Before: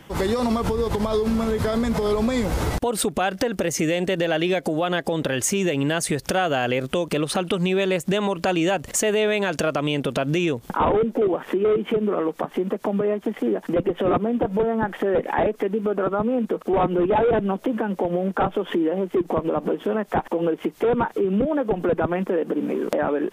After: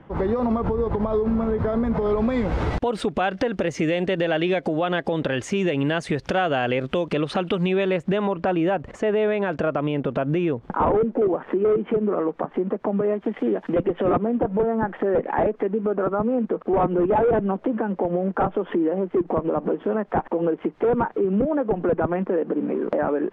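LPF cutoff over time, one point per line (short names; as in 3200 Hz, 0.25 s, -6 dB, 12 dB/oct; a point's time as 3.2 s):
1.84 s 1300 Hz
2.73 s 3200 Hz
7.57 s 3200 Hz
8.49 s 1600 Hz
12.91 s 1600 Hz
13.5 s 3300 Hz
14.39 s 1700 Hz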